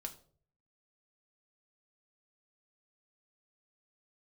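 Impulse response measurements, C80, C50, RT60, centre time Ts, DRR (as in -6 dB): 18.5 dB, 14.5 dB, 0.50 s, 8 ms, 4.0 dB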